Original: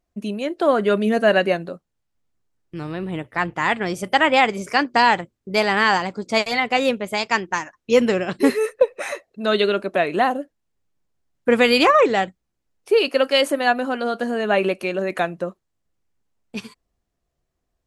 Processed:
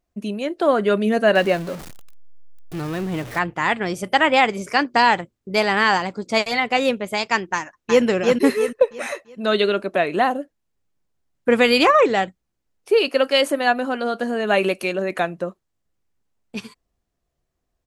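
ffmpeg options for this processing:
-filter_complex "[0:a]asettb=1/sr,asplit=3[a][b][c];[a]atrim=end=1.354[d];[b]atrim=start=1.35:end=3.39,asetpts=PTS-STARTPTS,afade=t=in:d=0.004:c=qsin,afade=t=out:st=2.036:d=0.004:c=qsin,aeval=exprs='val(0)+0.5*0.0316*sgn(val(0))':c=same[e];[c]atrim=start=3.386[f];[d][e]acrossfade=d=0.004:c1=hsin:c2=qsin[g];[g][f]acrossfade=d=0.004:c1=qsin:c2=hsin,asplit=2[h][i];[i]afade=t=in:st=7.55:d=0.01,afade=t=out:st=8.04:d=0.01,aecho=0:1:340|680|1020|1360|1700:0.749894|0.262463|0.091862|0.0321517|0.0112531[j];[h][j]amix=inputs=2:normalize=0,asettb=1/sr,asplit=3[k][l][m];[k]atrim=end=14.474[n];[l]atrim=start=14.47:end=14.93,asetpts=PTS-STARTPTS,afade=t=in:d=0.004:c=qsin,afade=t=out:st=0.456:d=0.004:c=qsin,highshelf=f=3.9k:g=8.5[o];[m]atrim=start=14.926[p];[n][o]acrossfade=d=0.004:c1=hsin:c2=qsin[q];[q][p]acrossfade=d=0.004:c1=qsin:c2=hsin"

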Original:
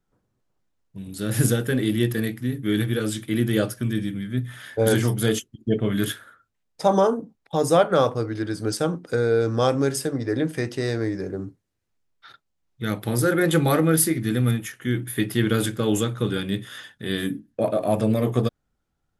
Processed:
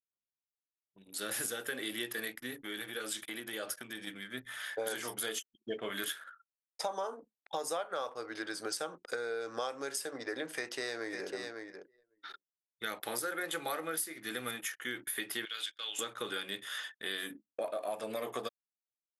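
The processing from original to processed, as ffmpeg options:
-filter_complex "[0:a]asettb=1/sr,asplit=3[a][b][c];[a]atrim=end=2.554[d];[b]atrim=start=2.55:end=4.07,asetpts=PTS-STARTPTS,afade=t=in:d=0.004:c=qsin,afade=t=out:st=1.516:d=0.004:c=qsin,acompressor=threshold=-26dB:ratio=6:attack=3.2:release=140:knee=1:detection=peak[e];[c]atrim=start=4.066[f];[d][e]acrossfade=d=0.004:c1=hsin:c2=qsin[g];[g][f]acrossfade=d=0.004:c1=qsin:c2=hsin,asplit=2[h][i];[i]afade=t=in:st=10.55:d=0.01,afade=t=out:st=11.32:d=0.01,aecho=0:1:550|1100:0.354813|0.053222[j];[h][j]amix=inputs=2:normalize=0,asettb=1/sr,asplit=3[k][l][m];[k]atrim=end=15.454[n];[l]atrim=start=15.45:end=15.99,asetpts=PTS-STARTPTS,afade=t=in:d=0.004:c=qsin,afade=t=out:st=0.536:d=0.004:c=qsin,bandpass=f=3.4k:t=q:w=1.9[o];[m]atrim=start=15.986[p];[n][o]acrossfade=d=0.004:c1=hsin:c2=qsin[q];[q][p]acrossfade=d=0.004:c1=qsin:c2=hsin,highpass=700,anlmdn=0.00251,acompressor=threshold=-34dB:ratio=6"

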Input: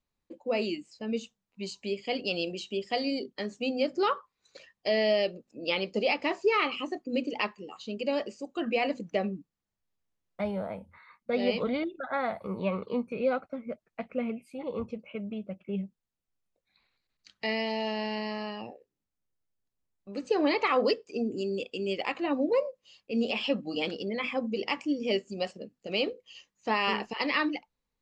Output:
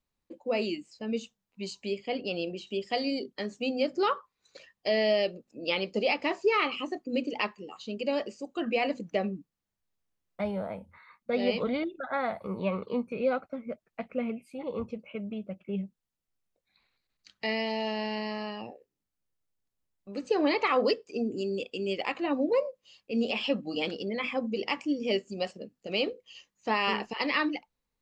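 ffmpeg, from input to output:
-filter_complex "[0:a]asettb=1/sr,asplit=3[a][b][c];[a]atrim=end=1.984[d];[b]atrim=start=1.98:end=2.67,asetpts=PTS-STARTPTS,afade=t=in:d=0.004:c=qsin,afade=t=out:st=0.686:d=0.004:c=qsin,highshelf=f=3.4k:g=-10.5[e];[c]atrim=start=2.666[f];[d][e]acrossfade=d=0.004:c1=hsin:c2=qsin[g];[g][f]acrossfade=d=0.004:c1=qsin:c2=hsin"

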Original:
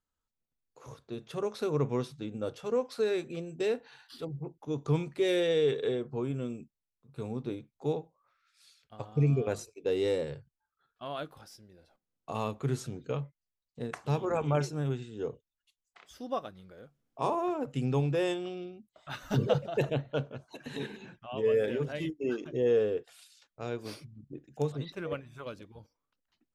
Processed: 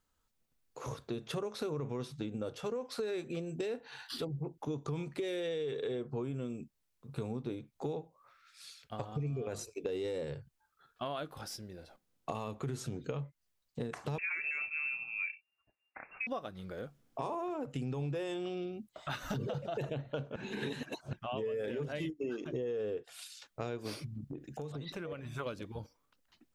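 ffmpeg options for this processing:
-filter_complex "[0:a]asettb=1/sr,asplit=3[a][b][c];[a]atrim=end=14.184[d];[b]atrim=start=14.18:end=16.27,asetpts=PTS-STARTPTS,afade=t=in:d=0.004:c=qsin,afade=t=out:st=2.086:d=0.004:c=qsin,lowpass=f=2.4k:t=q:w=0.5098,lowpass=f=2.4k:t=q:w=0.6013,lowpass=f=2.4k:t=q:w=0.9,lowpass=f=2.4k:t=q:w=2.563,afreqshift=-2800[e];[c]atrim=start=16.266[f];[d][e]acrossfade=d=0.004:c1=hsin:c2=qsin[g];[g][f]acrossfade=d=0.004:c1=qsin:c2=hsin,asplit=3[h][i][j];[h]afade=t=out:st=24.17:d=0.02[k];[i]acompressor=threshold=-46dB:ratio=8:attack=3.2:release=140:knee=1:detection=peak,afade=t=in:st=24.17:d=0.02,afade=t=out:st=25.28:d=0.02[l];[j]afade=t=in:st=25.28:d=0.02[m];[k][l][m]amix=inputs=3:normalize=0,asplit=3[n][o][p];[n]atrim=end=20.362[q];[o]atrim=start=20.358:end=21.132,asetpts=PTS-STARTPTS,areverse[r];[p]atrim=start=21.128[s];[q][r]acrossfade=d=0.004:c1=hsin:c2=hsin[t];[t][s]acrossfade=d=0.004:c1=hsin:c2=hsin,acontrast=78,alimiter=limit=-18dB:level=0:latency=1:release=36,acompressor=threshold=-38dB:ratio=5,volume=2dB"

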